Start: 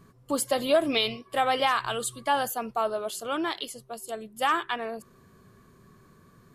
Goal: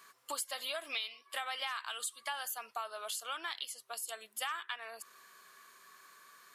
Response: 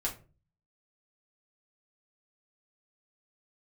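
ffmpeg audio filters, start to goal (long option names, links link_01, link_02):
-af "highpass=1400,acompressor=threshold=-47dB:ratio=4,volume=8dB"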